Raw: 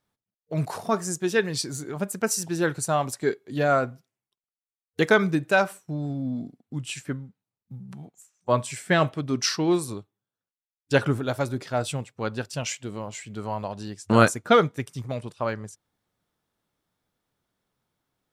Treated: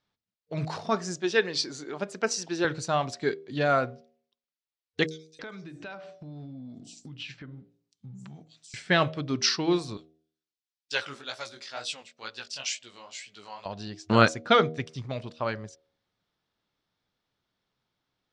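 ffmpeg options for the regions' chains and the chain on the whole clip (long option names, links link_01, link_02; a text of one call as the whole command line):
ffmpeg -i in.wav -filter_complex "[0:a]asettb=1/sr,asplit=3[link_01][link_02][link_03];[link_01]atrim=end=1.214[link_04];[link_02]atrim=start=1.21:end=2.65,asetpts=PTS-STARTPTS,afade=type=in:duration=0.004:curve=qsin,afade=type=out:start_time=1.436:duration=0.004:curve=qsin,highpass=330,lowshelf=frequency=460:gain=5[link_05];[link_03]atrim=start=2.646[link_06];[link_04][link_05]acrossfade=duration=0.004:curve1=hsin:curve2=qsin[link_07];[link_07][link_06]acrossfade=duration=0.004:curve1=qsin:curve2=hsin,asettb=1/sr,asplit=3[link_08][link_09][link_10];[link_08]atrim=end=5.064[link_11];[link_09]atrim=start=5.06:end=8.74,asetpts=PTS-STARTPTS,afade=type=in:duration=0.004:curve=qsin,afade=type=out:start_time=3.676:duration=0.004:curve=qsin,bandreject=frequency=57.7:width_type=h:width=4,bandreject=frequency=115.4:width_type=h:width=4,bandreject=frequency=173.1:width_type=h:width=4,bandreject=frequency=230.8:width_type=h:width=4,bandreject=frequency=288.5:width_type=h:width=4,bandreject=frequency=346.2:width_type=h:width=4,bandreject=frequency=403.9:width_type=h:width=4,bandreject=frequency=461.6:width_type=h:width=4,bandreject=frequency=519.3:width_type=h:width=4,bandreject=frequency=577:width_type=h:width=4,bandreject=frequency=634.7:width_type=h:width=4,bandreject=frequency=692.4:width_type=h:width=4,bandreject=frequency=750.1:width_type=h:width=4,acrossover=split=5400[link_12][link_13];[link_12]adelay=330[link_14];[link_14][link_13]amix=inputs=2:normalize=0,atrim=end_sample=162288,acompressor=threshold=-36dB:ratio=8:attack=3.2:release=140:knee=1:detection=peak[link_15];[link_10]atrim=start=8.736[link_16];[link_11][link_15]acrossfade=duration=0.004:curve1=hsin:curve2=qsin[link_17];[link_17][link_16]acrossfade=duration=0.004:curve1=qsin:curve2=hsin,asettb=1/sr,asplit=3[link_18][link_19][link_20];[link_18]atrim=end=9.974[link_21];[link_19]atrim=start=9.97:end=13.66,asetpts=PTS-STARTPTS,afade=type=in:duration=0.004:curve=qsin,afade=type=out:start_time=3.686:duration=0.004:curve=qsin,highpass=frequency=1500:poles=1,aemphasis=mode=production:type=50kf,flanger=delay=16:depth=6.6:speed=2.1[link_22];[link_20]atrim=start=13.656[link_23];[link_21][link_22]acrossfade=duration=0.004:curve1=hsin:curve2=qsin[link_24];[link_24][link_23]acrossfade=duration=0.004:curve1=qsin:curve2=hsin,lowpass=frequency=4900:width=0.5412,lowpass=frequency=4900:width=1.3066,highshelf=frequency=3100:gain=11,bandreject=frequency=78.89:width_type=h:width=4,bandreject=frequency=157.78:width_type=h:width=4,bandreject=frequency=236.67:width_type=h:width=4,bandreject=frequency=315.56:width_type=h:width=4,bandreject=frequency=394.45:width_type=h:width=4,bandreject=frequency=473.34:width_type=h:width=4,bandreject=frequency=552.23:width_type=h:width=4,bandreject=frequency=631.12:width_type=h:width=4,bandreject=frequency=710.01:width_type=h:width=4,volume=-3dB" out.wav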